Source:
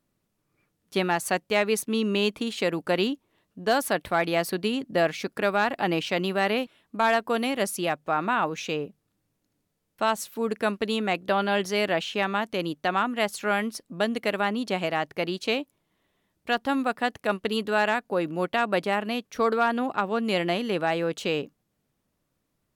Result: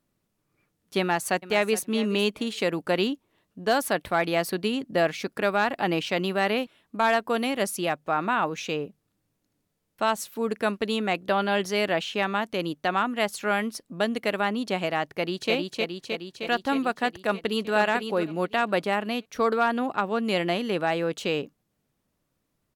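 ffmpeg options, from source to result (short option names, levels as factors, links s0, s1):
-filter_complex "[0:a]asplit=2[s0][s1];[s1]afade=t=in:st=1:d=0.01,afade=t=out:st=1.84:d=0.01,aecho=0:1:420|840:0.16788|0.0251821[s2];[s0][s2]amix=inputs=2:normalize=0,asplit=2[s3][s4];[s4]afade=t=in:st=15.06:d=0.01,afade=t=out:st=15.53:d=0.01,aecho=0:1:310|620|930|1240|1550|1860|2170|2480|2790|3100|3410|3720:0.749894|0.524926|0.367448|0.257214|0.18005|0.126035|0.0882243|0.061757|0.0432299|0.0302609|0.0211827|0.0148279[s5];[s3][s5]amix=inputs=2:normalize=0,asplit=2[s6][s7];[s7]afade=t=in:st=17.23:d=0.01,afade=t=out:st=17.73:d=0.01,aecho=0:1:500|1000|1500:0.446684|0.0670025|0.0100504[s8];[s6][s8]amix=inputs=2:normalize=0"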